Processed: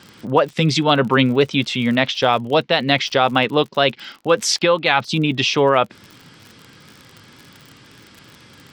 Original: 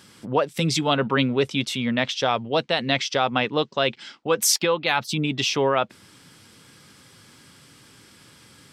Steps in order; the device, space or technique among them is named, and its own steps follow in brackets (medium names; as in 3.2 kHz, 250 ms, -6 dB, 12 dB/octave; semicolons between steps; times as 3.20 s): lo-fi chain (low-pass 4.8 kHz 12 dB/octave; wow and flutter; crackle 54 per s -35 dBFS); trim +6 dB